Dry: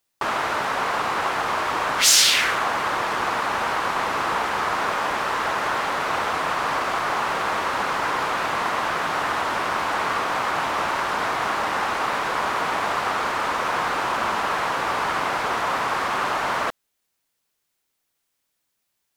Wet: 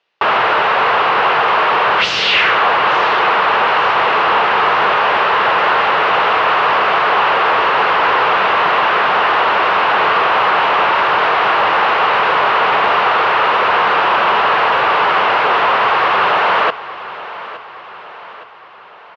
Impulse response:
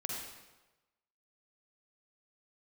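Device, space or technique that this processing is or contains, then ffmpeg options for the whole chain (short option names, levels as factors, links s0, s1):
overdrive pedal into a guitar cabinet: -filter_complex "[0:a]asplit=2[s0][s1];[s1]highpass=f=720:p=1,volume=14.1,asoftclip=type=tanh:threshold=0.841[s2];[s0][s2]amix=inputs=2:normalize=0,lowpass=f=1500:p=1,volume=0.501,highpass=100,equalizer=f=270:t=q:w=4:g=-8,equalizer=f=440:t=q:w=4:g=5,equalizer=f=2800:t=q:w=4:g=7,lowpass=f=4500:w=0.5412,lowpass=f=4500:w=1.3066,aecho=1:1:866|1732|2598|3464|4330:0.158|0.0824|0.0429|0.0223|0.0116"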